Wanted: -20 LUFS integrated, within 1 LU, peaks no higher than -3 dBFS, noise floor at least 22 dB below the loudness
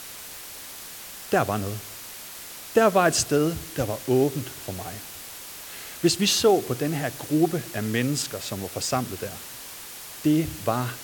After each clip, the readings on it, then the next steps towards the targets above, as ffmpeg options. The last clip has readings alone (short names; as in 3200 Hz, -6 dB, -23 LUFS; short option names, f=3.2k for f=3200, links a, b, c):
noise floor -40 dBFS; noise floor target -47 dBFS; loudness -24.5 LUFS; peak -6.0 dBFS; loudness target -20.0 LUFS
-> -af "afftdn=nr=7:nf=-40"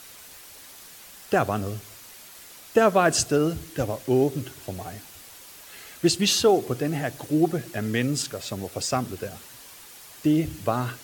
noise floor -46 dBFS; noise floor target -47 dBFS
-> -af "afftdn=nr=6:nf=-46"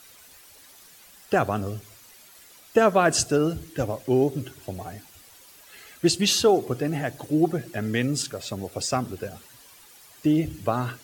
noise floor -51 dBFS; loudness -24.5 LUFS; peak -6.5 dBFS; loudness target -20.0 LUFS
-> -af "volume=4.5dB,alimiter=limit=-3dB:level=0:latency=1"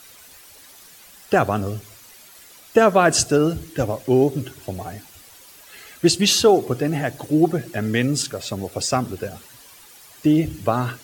loudness -20.0 LUFS; peak -3.0 dBFS; noise floor -47 dBFS